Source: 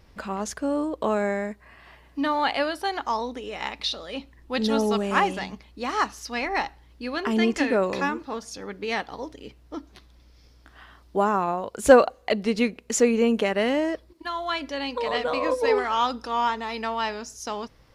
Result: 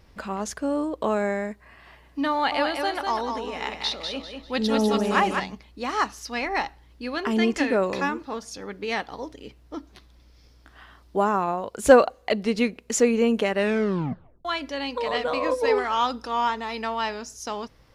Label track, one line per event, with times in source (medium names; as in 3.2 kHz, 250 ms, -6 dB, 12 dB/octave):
2.320000	5.400000	feedback delay 197 ms, feedback 31%, level -5.5 dB
13.570000	13.570000	tape stop 0.88 s